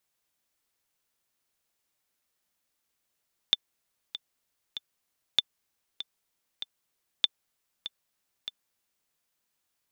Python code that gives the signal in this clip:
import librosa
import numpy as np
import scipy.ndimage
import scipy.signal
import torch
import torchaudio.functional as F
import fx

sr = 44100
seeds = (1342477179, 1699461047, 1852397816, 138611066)

y = fx.click_track(sr, bpm=97, beats=3, bars=3, hz=3540.0, accent_db=14.0, level_db=-7.5)